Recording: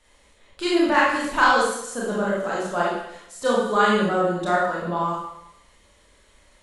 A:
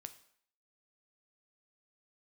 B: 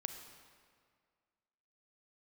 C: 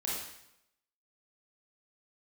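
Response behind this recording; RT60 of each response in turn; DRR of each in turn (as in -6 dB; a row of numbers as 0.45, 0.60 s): C; 0.60, 2.0, 0.85 s; 9.0, 6.5, -6.0 dB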